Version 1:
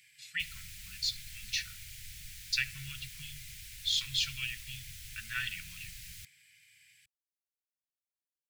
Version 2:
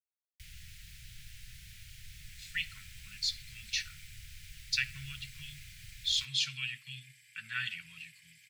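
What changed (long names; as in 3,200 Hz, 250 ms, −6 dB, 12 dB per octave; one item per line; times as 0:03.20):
speech: entry +2.20 s
background: add high-shelf EQ 4,700 Hz −9.5 dB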